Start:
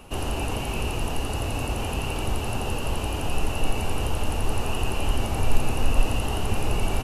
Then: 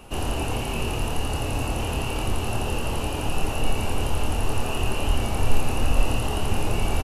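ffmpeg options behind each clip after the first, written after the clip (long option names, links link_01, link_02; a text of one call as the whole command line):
ffmpeg -i in.wav -filter_complex "[0:a]asplit=2[link_01][link_02];[link_02]adelay=26,volume=-5dB[link_03];[link_01][link_03]amix=inputs=2:normalize=0" out.wav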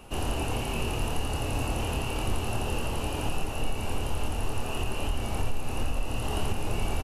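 ffmpeg -i in.wav -af "alimiter=limit=-14.5dB:level=0:latency=1:release=391,volume=-3dB" out.wav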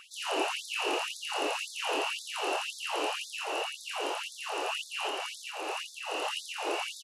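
ffmpeg -i in.wav -af "highpass=110,lowpass=6900,afftfilt=real='re*gte(b*sr/1024,280*pow(3500/280,0.5+0.5*sin(2*PI*1.9*pts/sr)))':imag='im*gte(b*sr/1024,280*pow(3500/280,0.5+0.5*sin(2*PI*1.9*pts/sr)))':win_size=1024:overlap=0.75,volume=5dB" out.wav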